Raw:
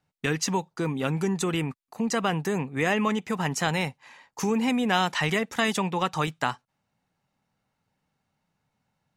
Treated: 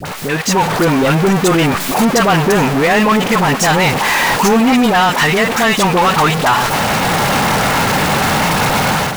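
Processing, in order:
converter with a step at zero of −23 dBFS
in parallel at +0.5 dB: brickwall limiter −16.5 dBFS, peak gain reduction 8.5 dB
on the sum: high-shelf EQ 2,400 Hz −10 dB
all-pass dispersion highs, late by 55 ms, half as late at 890 Hz
on a send: feedback echo with a low-pass in the loop 445 ms, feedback 83%, level −21 dB
on the sum: bit-depth reduction 8 bits, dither none
low-shelf EQ 360 Hz −11 dB
automatic gain control gain up to 11.5 dB
soft clipping −12.5 dBFS, distortion −13 dB
level +6 dB

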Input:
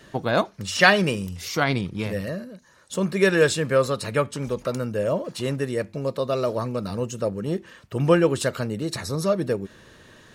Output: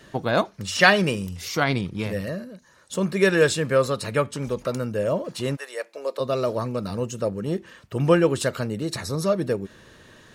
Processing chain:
0:05.55–0:06.19: high-pass filter 720 Hz → 340 Hz 24 dB per octave

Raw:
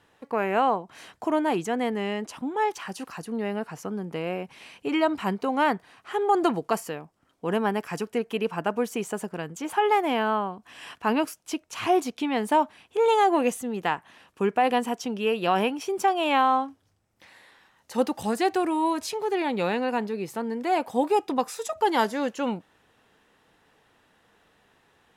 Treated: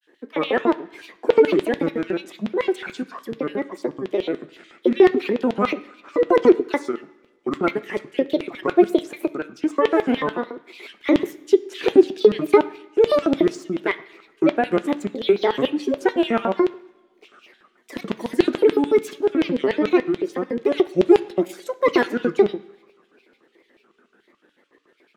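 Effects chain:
hollow resonant body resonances 260/1,600 Hz, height 18 dB, ringing for 20 ms
granular cloud, spray 18 ms, pitch spread up and down by 7 semitones
auto-filter high-pass square 6.9 Hz 370–3,200 Hz
on a send: convolution reverb RT60 1.0 s, pre-delay 3 ms, DRR 9.5 dB
on the sum: level −5 dB

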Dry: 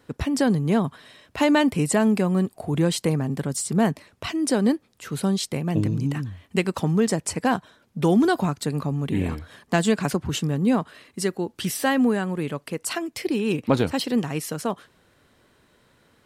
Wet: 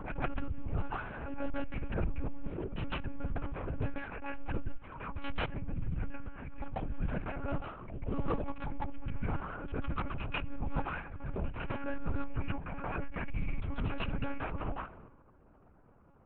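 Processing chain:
variable-slope delta modulation 32 kbit/s
low-pass that shuts in the quiet parts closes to 940 Hz, open at −17 dBFS
dynamic equaliser 200 Hz, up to +7 dB, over −35 dBFS, Q 1.2
reversed playback
downward compressor 16 to 1, threshold −28 dBFS, peak gain reduction 20 dB
reversed playback
transient designer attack −11 dB, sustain +10 dB
single-sideband voice off tune −290 Hz 170–2,800 Hz
Butterworth band-reject 1,900 Hz, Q 4.8
backwards echo 145 ms −8 dB
on a send at −21 dB: convolution reverb RT60 0.55 s, pre-delay 3 ms
on the sum: gain into a clipping stage and back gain 27 dB
one-pitch LPC vocoder at 8 kHz 280 Hz
background raised ahead of every attack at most 46 dB per second
level +1 dB

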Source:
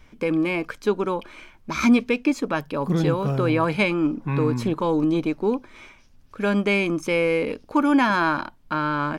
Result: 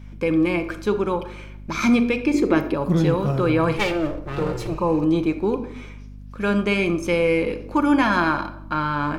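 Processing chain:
0:03.76–0:04.75: lower of the sound and its delayed copy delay 2.2 ms
0:04.70–0:04.98: healed spectral selection 1,300–7,800 Hz after
convolution reverb RT60 0.75 s, pre-delay 6 ms, DRR 7 dB
mains hum 50 Hz, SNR 17 dB
0:02.34–0:02.74: hollow resonant body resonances 360/2,100 Hz, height 16 dB

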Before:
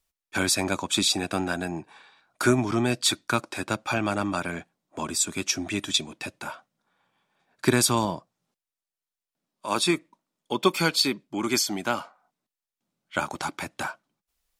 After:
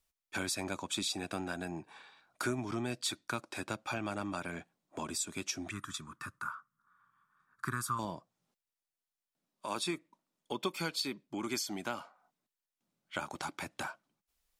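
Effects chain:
0:05.71–0:07.99: drawn EQ curve 130 Hz 0 dB, 740 Hz −21 dB, 1,200 Hz +14 dB, 2,400 Hz −13 dB, 3,900 Hz −13 dB, 11,000 Hz −3 dB
downward compressor 2 to 1, threshold −37 dBFS, peak gain reduction 12.5 dB
level −3 dB

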